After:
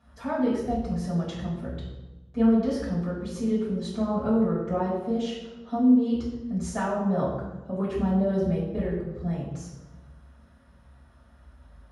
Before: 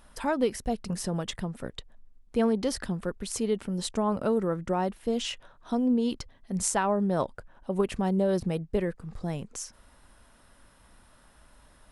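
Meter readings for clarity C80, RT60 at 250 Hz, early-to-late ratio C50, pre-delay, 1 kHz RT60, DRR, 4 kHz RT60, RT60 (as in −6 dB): 4.5 dB, 1.5 s, 2.5 dB, 3 ms, 1.0 s, −8.0 dB, 0.75 s, 1.1 s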